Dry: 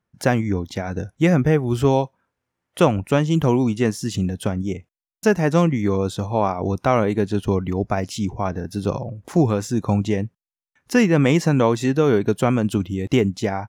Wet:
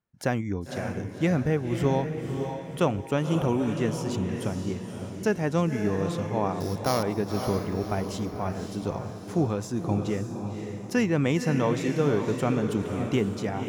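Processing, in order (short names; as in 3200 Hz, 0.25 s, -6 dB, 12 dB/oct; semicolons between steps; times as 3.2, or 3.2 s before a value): 6.6–7.03 sample sorter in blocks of 8 samples; diffused feedback echo 0.543 s, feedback 45%, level -6 dB; gain -8 dB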